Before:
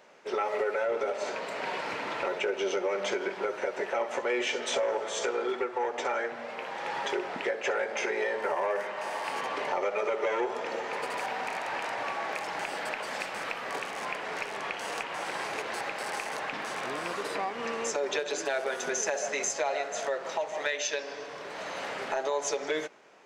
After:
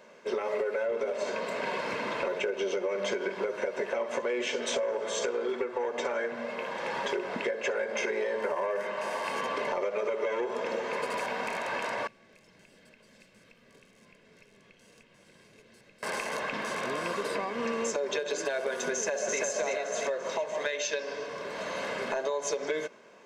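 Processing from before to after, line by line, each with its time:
12.07–16.03 passive tone stack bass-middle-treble 10-0-1
18.93–19.41 echo throw 0.34 s, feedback 40%, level -1 dB
whole clip: bell 230 Hz +14 dB 0.69 oct; comb 1.9 ms, depth 54%; compressor, threshold -27 dBFS

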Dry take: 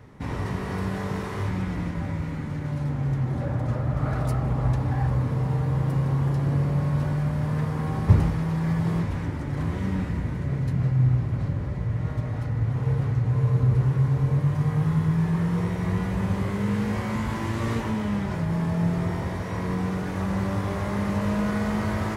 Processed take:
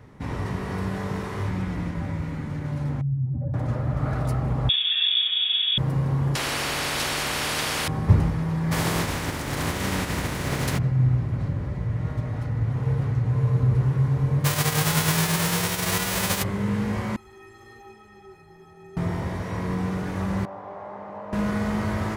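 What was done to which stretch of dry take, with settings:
3.01–3.54 spectral contrast raised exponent 2
4.69–5.78 inverted band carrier 3500 Hz
6.35–7.88 spectral compressor 10:1
8.71–10.77 spectral contrast lowered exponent 0.52
14.44–16.42 spectral whitening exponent 0.3
17.16–18.97 metallic resonator 380 Hz, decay 0.29 s, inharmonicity 0.03
20.45–21.33 band-pass 750 Hz, Q 2.4

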